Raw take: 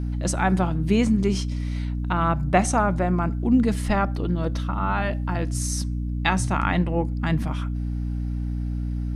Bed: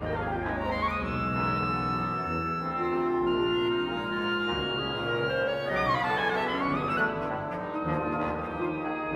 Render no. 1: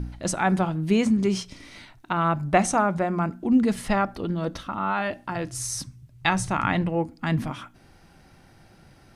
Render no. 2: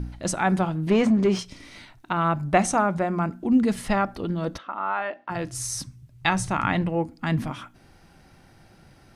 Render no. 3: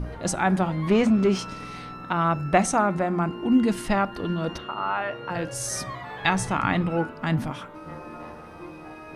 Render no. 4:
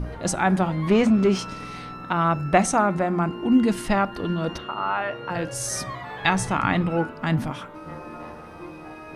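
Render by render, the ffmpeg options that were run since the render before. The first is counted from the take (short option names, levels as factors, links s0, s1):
-af "bandreject=f=60:t=h:w=4,bandreject=f=120:t=h:w=4,bandreject=f=180:t=h:w=4,bandreject=f=240:t=h:w=4,bandreject=f=300:t=h:w=4"
-filter_complex "[0:a]asettb=1/sr,asplit=3[s0][s1][s2];[s0]atrim=end=0.874[s3];[s1]atrim=start=0.87:end=1.39,asetpts=PTS-STARTPTS,afade=t=in:d=0.004:c=qsin,afade=t=out:st=0.516:d=0.004:c=qsin,asplit=2[s4][s5];[s5]highpass=f=720:p=1,volume=8.91,asoftclip=type=tanh:threshold=0.335[s6];[s4][s6]amix=inputs=2:normalize=0,lowpass=f=1000:p=1,volume=0.501[s7];[s2]atrim=start=1.386[s8];[s3][s7]acrossfade=d=0.004:c1=hsin:c2=qsin[s9];[s9][s8]acrossfade=d=0.004:c1=qsin:c2=hsin,asplit=3[s10][s11][s12];[s10]afade=t=out:st=4.57:d=0.02[s13];[s11]highpass=450,lowpass=2300,afade=t=in:st=4.57:d=0.02,afade=t=out:st=5.29:d=0.02[s14];[s12]afade=t=in:st=5.29:d=0.02[s15];[s13][s14][s15]amix=inputs=3:normalize=0"
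-filter_complex "[1:a]volume=0.316[s0];[0:a][s0]amix=inputs=2:normalize=0"
-af "volume=1.19"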